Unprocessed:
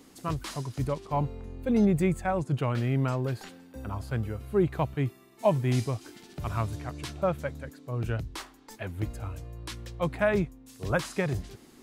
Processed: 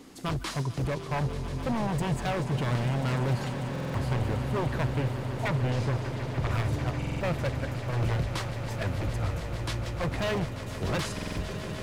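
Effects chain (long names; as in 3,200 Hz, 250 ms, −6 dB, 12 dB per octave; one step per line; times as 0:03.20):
high-shelf EQ 8,100 Hz −8 dB
in parallel at −2 dB: compressor whose output falls as the input rises −30 dBFS, ratio −0.5
on the sum: wave folding −22 dBFS
0:05.48–0:06.51: high-frequency loss of the air 59 metres
on a send: echo that builds up and dies away 148 ms, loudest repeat 8, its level −14.5 dB
on the sum: buffer that repeats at 0:03.71/0:06.98/0:11.14, samples 2,048, times 4
level −2 dB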